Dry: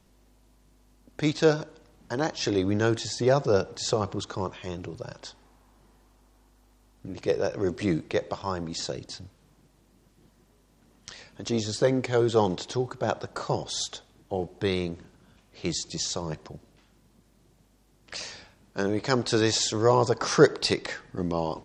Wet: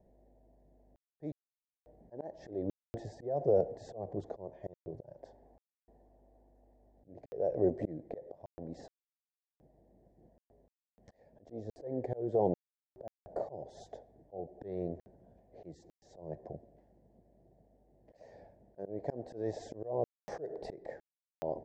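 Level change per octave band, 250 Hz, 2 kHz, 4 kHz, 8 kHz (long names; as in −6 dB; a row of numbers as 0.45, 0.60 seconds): −13.0 dB, below −25 dB, below −30 dB, below −30 dB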